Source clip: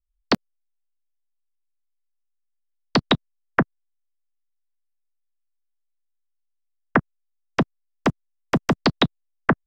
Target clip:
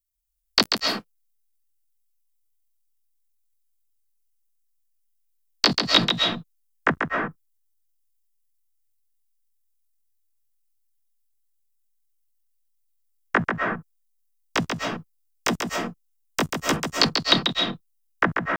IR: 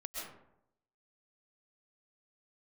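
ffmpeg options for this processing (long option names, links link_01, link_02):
-filter_complex "[0:a]crystalizer=i=6.5:c=0,atempo=0.52,asplit=2[link_01][link_02];[1:a]atrim=start_sample=2205,afade=type=out:start_time=0.29:duration=0.01,atrim=end_sample=13230,adelay=139[link_03];[link_02][link_03]afir=irnorm=-1:irlink=0,volume=0dB[link_04];[link_01][link_04]amix=inputs=2:normalize=0,volume=-7dB"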